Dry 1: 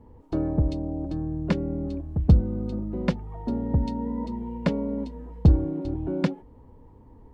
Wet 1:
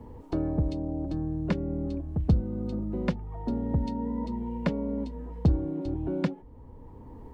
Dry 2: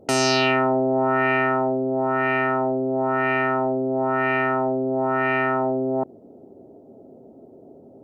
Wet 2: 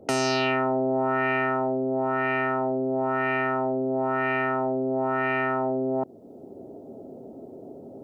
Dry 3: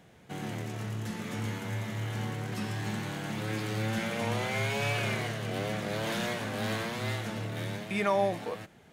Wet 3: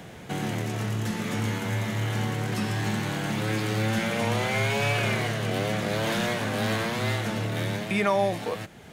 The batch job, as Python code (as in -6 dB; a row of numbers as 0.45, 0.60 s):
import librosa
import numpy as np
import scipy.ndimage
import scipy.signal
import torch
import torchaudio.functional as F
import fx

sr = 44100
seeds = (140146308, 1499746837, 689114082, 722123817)

y = fx.band_squash(x, sr, depth_pct=40)
y = y * 10.0 ** (-12 / 20.0) / np.max(np.abs(y))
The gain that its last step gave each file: -2.5, -4.0, +5.5 dB